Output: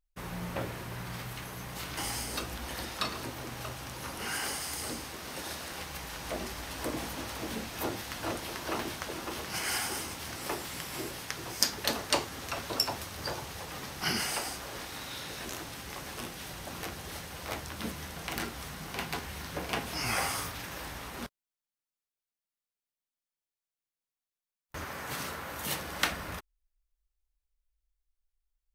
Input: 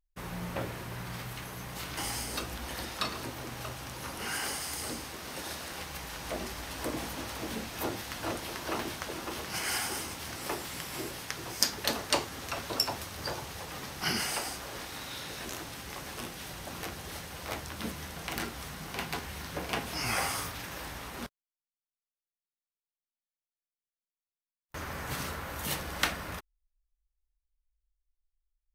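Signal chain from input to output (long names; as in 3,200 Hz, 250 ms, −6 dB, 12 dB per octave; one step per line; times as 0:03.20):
0:24.84–0:26.09: high-pass filter 260 Hz → 95 Hz 6 dB per octave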